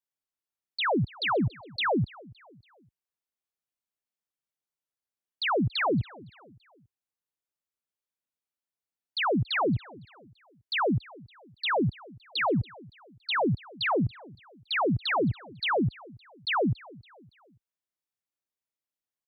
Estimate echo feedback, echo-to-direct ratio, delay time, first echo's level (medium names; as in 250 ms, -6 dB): 45%, -21.5 dB, 282 ms, -22.5 dB